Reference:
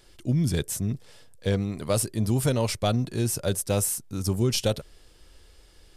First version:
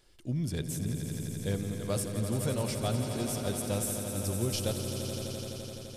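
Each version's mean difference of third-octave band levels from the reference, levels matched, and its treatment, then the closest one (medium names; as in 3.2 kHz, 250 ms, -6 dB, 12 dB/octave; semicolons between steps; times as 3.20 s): 11.5 dB: echo with a slow build-up 85 ms, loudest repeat 5, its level -10 dB; trim -8.5 dB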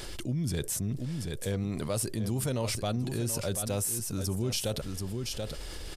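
8.5 dB: on a send: delay 733 ms -13.5 dB; on the sum: level flattener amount 70%; trim -9 dB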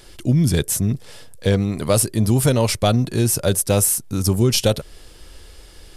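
1.5 dB: peaking EQ 11 kHz +4 dB 0.29 oct; in parallel at -1 dB: compression, threshold -33 dBFS, peak gain reduction 14 dB; on the sum: trim +5.5 dB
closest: third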